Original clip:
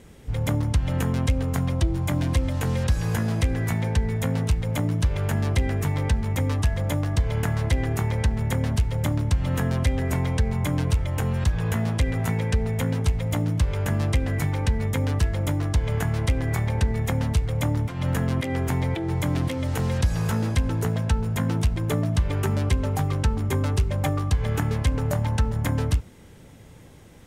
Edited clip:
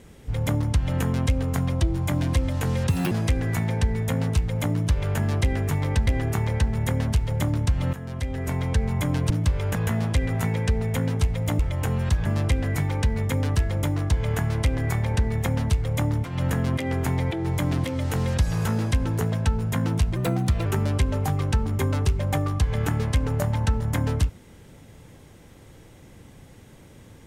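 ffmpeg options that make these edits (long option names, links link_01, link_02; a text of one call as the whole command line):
ffmpeg -i in.wav -filter_complex "[0:a]asplit=11[link_01][link_02][link_03][link_04][link_05][link_06][link_07][link_08][link_09][link_10][link_11];[link_01]atrim=end=2.894[link_12];[link_02]atrim=start=2.89:end=3.25,asetpts=PTS-STARTPTS,asetrate=71442,aresample=44100[link_13];[link_03]atrim=start=3.246:end=6.212[link_14];[link_04]atrim=start=7.708:end=9.57,asetpts=PTS-STARTPTS,afade=type=out:start_time=1.858:duration=0.004:curve=hsin:silence=0.188365[link_15];[link_05]atrim=start=9.57:end=10.942,asetpts=PTS-STARTPTS,afade=type=in:duration=0.86:silence=0.188365[link_16];[link_06]atrim=start=13.438:end=13.892[link_17];[link_07]atrim=start=11.598:end=13.442[link_18];[link_08]atrim=start=10.938:end=11.602[link_19];[link_09]atrim=start=13.888:end=21.804[link_20];[link_10]atrim=start=21.8:end=22.37,asetpts=PTS-STARTPTS,asetrate=50715,aresample=44100,atrim=end_sample=21858,asetpts=PTS-STARTPTS[link_21];[link_11]atrim=start=22.366[link_22];[link_12][link_13]acrossfade=duration=0.004:curve1=hsin:curve2=hsin[link_23];[link_23][link_14]acrossfade=duration=0.004:curve1=hsin:curve2=hsin[link_24];[link_15][link_16]concat=n=2:v=0:a=1[link_25];[link_24][link_25]acrossfade=duration=0.004:curve1=hsin:curve2=hsin[link_26];[link_26][link_17]acrossfade=duration=0.004:curve1=hsin:curve2=hsin[link_27];[link_27][link_18]acrossfade=duration=0.004:curve1=hsin:curve2=hsin[link_28];[link_28][link_19]acrossfade=duration=0.004:curve1=hsin:curve2=hsin[link_29];[link_29][link_20]acrossfade=duration=0.004:curve1=hsin:curve2=hsin[link_30];[link_30][link_21]acrossfade=duration=0.004:curve1=hsin:curve2=hsin[link_31];[link_31][link_22]acrossfade=duration=0.004:curve1=hsin:curve2=hsin" out.wav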